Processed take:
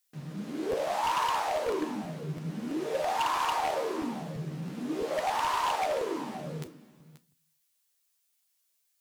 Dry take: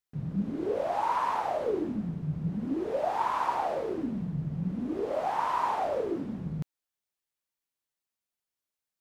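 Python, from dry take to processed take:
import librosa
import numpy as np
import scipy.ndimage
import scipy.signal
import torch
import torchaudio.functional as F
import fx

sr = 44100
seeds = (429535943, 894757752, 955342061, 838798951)

p1 = scipy.signal.sosfilt(scipy.signal.butter(2, 350.0, 'highpass', fs=sr, output='sos'), x)
p2 = fx.doubler(p1, sr, ms=13.0, db=-5)
p3 = p2 + fx.echo_single(p2, sr, ms=534, db=-16.5, dry=0)
p4 = fx.room_shoebox(p3, sr, seeds[0], volume_m3=270.0, walls='furnished', distance_m=0.48)
p5 = fx.rider(p4, sr, range_db=5, speed_s=0.5)
p6 = p4 + F.gain(torch.from_numpy(p5), -2.5).numpy()
p7 = fx.high_shelf(p6, sr, hz=3900.0, db=8.0)
p8 = 10.0 ** (-17.0 / 20.0) * (np.abs((p7 / 10.0 ** (-17.0 / 20.0) + 3.0) % 4.0 - 2.0) - 1.0)
p9 = fx.peak_eq(p8, sr, hz=570.0, db=-6.5, octaves=2.8)
y = fx.buffer_crackle(p9, sr, first_s=0.71, period_s=0.33, block=512, kind='repeat')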